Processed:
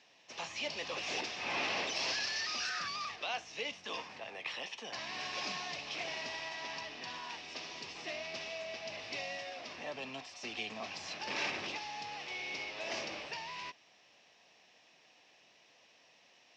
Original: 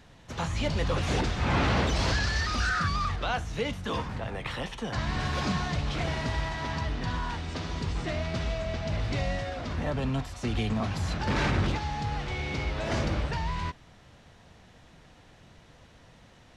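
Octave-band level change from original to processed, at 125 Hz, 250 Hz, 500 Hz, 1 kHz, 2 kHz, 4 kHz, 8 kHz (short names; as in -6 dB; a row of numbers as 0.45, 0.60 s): -30.5, -18.5, -10.0, -9.5, -5.5, -2.5, -3.5 dB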